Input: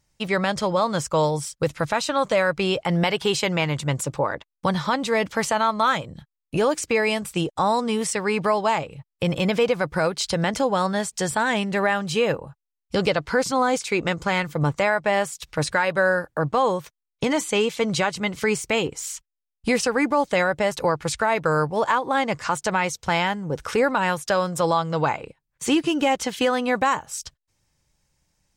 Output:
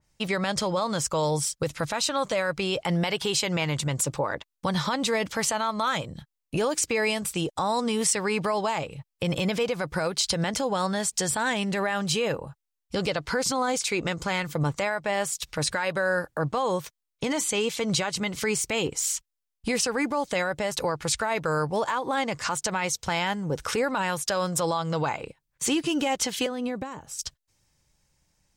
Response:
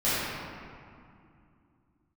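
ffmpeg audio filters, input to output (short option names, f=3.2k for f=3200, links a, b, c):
-filter_complex "[0:a]alimiter=limit=-17.5dB:level=0:latency=1:release=95,asettb=1/sr,asplit=3[a][b][c];[a]atrim=end=26.464[d];[b]atrim=start=26.46:end=27.19,asetpts=PTS-STARTPTS,afade=t=in:d=0.004:c=qsin,afade=t=out:st=0.726:d=0.004:c=qsin,acrossover=split=490[e][f];[f]acompressor=threshold=-39dB:ratio=6[g];[e][g]amix=inputs=2:normalize=0[h];[c]atrim=start=27.186[i];[d][h]acrossfade=d=0.004:c1=hsin:c2=qsin[j];[j][i]acrossfade=d=0.004:c1=qsin:c2=hsin,adynamicequalizer=threshold=0.00708:dfrequency=3000:dqfactor=0.7:tfrequency=3000:tqfactor=0.7:attack=5:release=100:ratio=0.375:range=2.5:mode=boostabove:tftype=highshelf"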